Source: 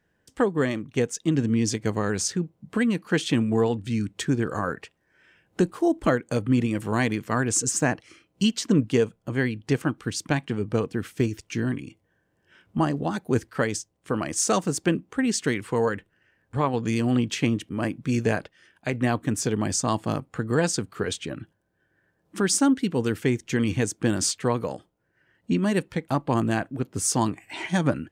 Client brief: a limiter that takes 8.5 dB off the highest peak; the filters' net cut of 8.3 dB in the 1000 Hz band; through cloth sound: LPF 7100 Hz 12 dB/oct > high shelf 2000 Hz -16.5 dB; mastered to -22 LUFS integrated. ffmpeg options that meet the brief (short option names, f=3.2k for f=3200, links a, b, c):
-af "equalizer=f=1k:t=o:g=-7,alimiter=limit=-18.5dB:level=0:latency=1,lowpass=7.1k,highshelf=f=2k:g=-16.5,volume=9dB"